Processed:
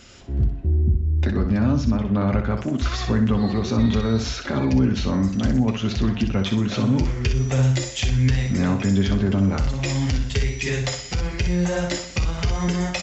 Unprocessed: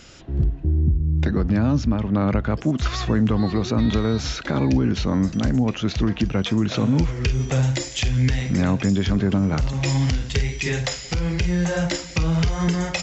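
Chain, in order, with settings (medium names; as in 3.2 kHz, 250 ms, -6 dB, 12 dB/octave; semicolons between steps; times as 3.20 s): comb of notches 160 Hz; feedback delay 62 ms, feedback 31%, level -8 dB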